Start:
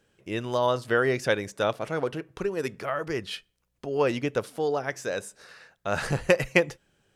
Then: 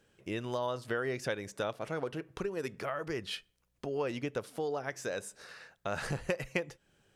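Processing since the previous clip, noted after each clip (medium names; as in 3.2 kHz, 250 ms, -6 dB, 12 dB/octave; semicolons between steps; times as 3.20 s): compression 2.5:1, threshold -34 dBFS, peak gain reduction 13 dB; trim -1 dB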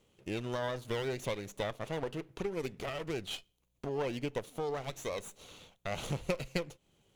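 comb filter that takes the minimum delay 0.3 ms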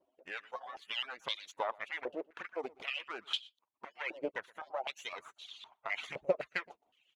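harmonic-percussive separation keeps percussive; delay 120 ms -23.5 dB; step-sequenced band-pass 3.9 Hz 590–3500 Hz; trim +12 dB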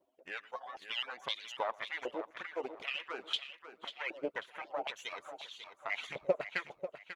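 feedback delay 542 ms, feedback 31%, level -10.5 dB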